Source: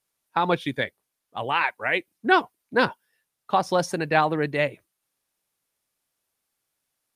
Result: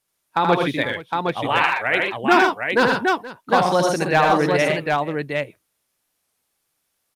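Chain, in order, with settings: hard clip -11.5 dBFS, distortion -21 dB; on a send: tapped delay 79/121/132/475/761 ms -4/-6.5/-12.5/-18/-3.5 dB; on the sum: record warp 45 rpm, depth 100 cents; gain +3 dB

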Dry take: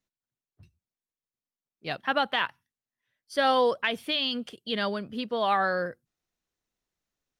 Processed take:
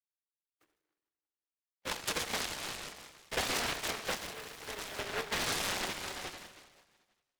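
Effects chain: per-bin expansion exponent 1.5; sample-and-hold 17×; wavefolder -21.5 dBFS; AGC gain up to 4 dB; gate -51 dBFS, range -19 dB; Schroeder reverb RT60 1.5 s, combs from 30 ms, DRR 7.5 dB; tremolo 5.6 Hz, depth 34%; compressor 6:1, threshold -39 dBFS, peak gain reduction 17 dB; mistuned SSB +200 Hz 220–2700 Hz; 4.15–4.99 bell 690 Hz -8 dB 2.7 oct; noise-modulated delay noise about 1200 Hz, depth 0.39 ms; gain +6.5 dB

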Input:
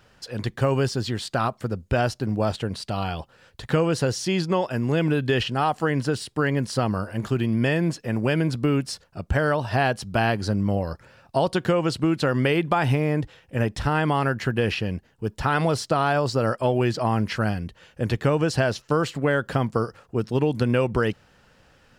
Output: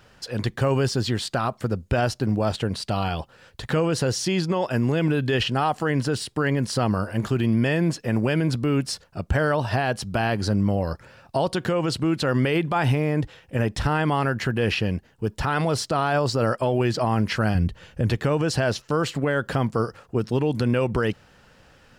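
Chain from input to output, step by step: 17.55–18.1 low shelf 180 Hz +11 dB; limiter -16.5 dBFS, peak gain reduction 9.5 dB; gain +3 dB

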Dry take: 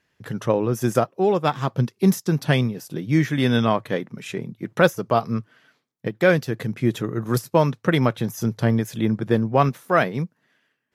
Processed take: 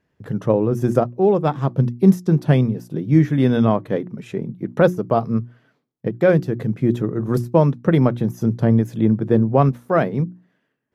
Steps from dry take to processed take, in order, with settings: tilt shelf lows +8 dB, about 1100 Hz; notches 60/120/180/240/300/360 Hz; gain -2 dB

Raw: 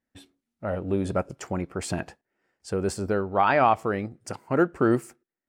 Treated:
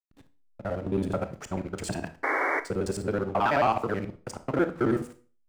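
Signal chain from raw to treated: local time reversal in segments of 54 ms; de-hum 81.3 Hz, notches 15; sample leveller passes 1; painted sound noise, 2.23–2.6, 270–2300 Hz -21 dBFS; backlash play -37.5 dBFS; on a send: reverb RT60 0.40 s, pre-delay 24 ms, DRR 11 dB; on the sum: gain -5.5 dB

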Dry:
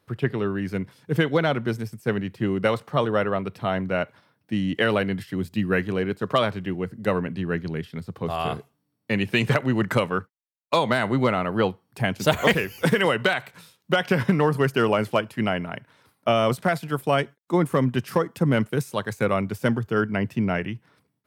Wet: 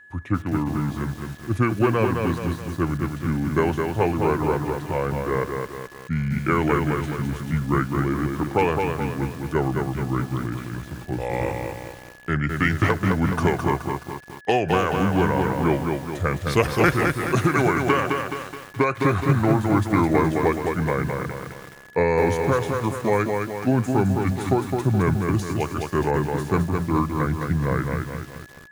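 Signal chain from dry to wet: speed mistake 45 rpm record played at 33 rpm; whine 1700 Hz -46 dBFS; lo-fi delay 0.212 s, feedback 55%, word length 7-bit, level -4 dB

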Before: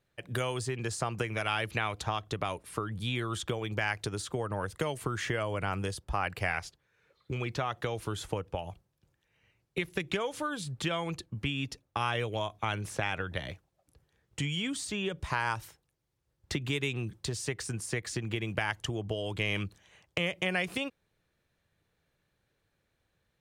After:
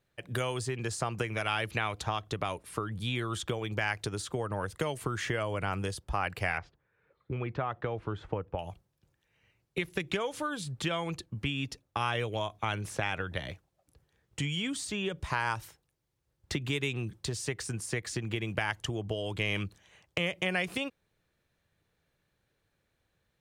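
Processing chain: 6.58–8.59 LPF 1800 Hz 12 dB/oct

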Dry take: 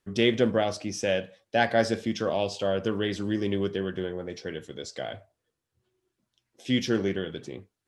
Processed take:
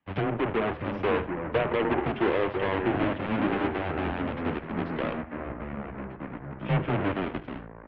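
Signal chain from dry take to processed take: half-waves squared off; treble ducked by the level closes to 860 Hz, closed at -15.5 dBFS; 1.58–2.98 bell 430 Hz +10 dB 0.21 oct; limiter -15 dBFS, peak gain reduction 7 dB; flange 0.74 Hz, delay 0.9 ms, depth 1.6 ms, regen -34%; added harmonics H 8 -11 dB, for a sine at -16 dBFS; echo 76 ms -16.5 dB; mistuned SSB -100 Hz 180–3100 Hz; echoes that change speed 0.595 s, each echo -4 st, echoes 2, each echo -6 dB

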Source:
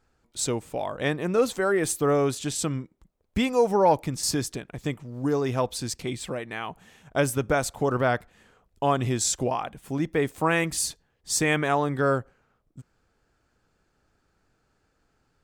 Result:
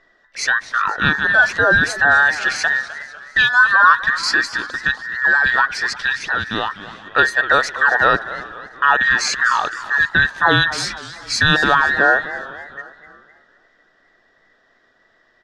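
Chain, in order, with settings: band inversion scrambler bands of 2000 Hz; high shelf 2100 Hz -8.5 dB; in parallel at -1.5 dB: limiter -21.5 dBFS, peak gain reduction 9.5 dB; on the sum: synth low-pass 4400 Hz, resonance Q 1.8; on a send: frequency-shifting echo 0.355 s, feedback 45%, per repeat -87 Hz, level -22 dB; on the sum: warbling echo 0.251 s, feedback 46%, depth 162 cents, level -15 dB; gain +7.5 dB

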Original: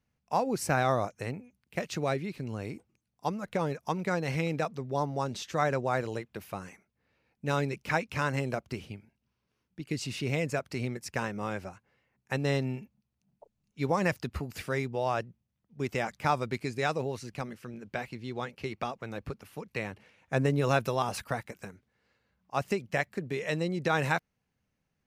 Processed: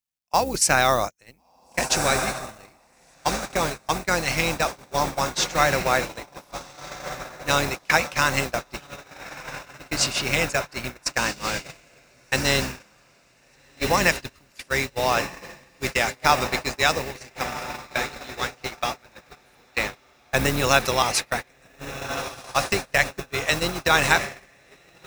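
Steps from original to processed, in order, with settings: octaver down 2 oct, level +2 dB; LPF 7300 Hz 12 dB/oct; companded quantiser 8-bit; tilt +3 dB/oct; notch 440 Hz, Q 13; diffused feedback echo 1.423 s, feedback 62%, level -5 dB; gate -33 dBFS, range -26 dB; high shelf 4400 Hz +6.5 dB; gain +8 dB

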